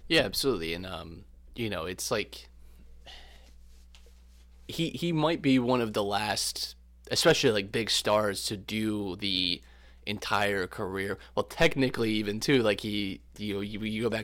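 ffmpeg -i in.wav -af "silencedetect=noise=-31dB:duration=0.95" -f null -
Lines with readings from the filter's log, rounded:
silence_start: 2.34
silence_end: 4.69 | silence_duration: 2.36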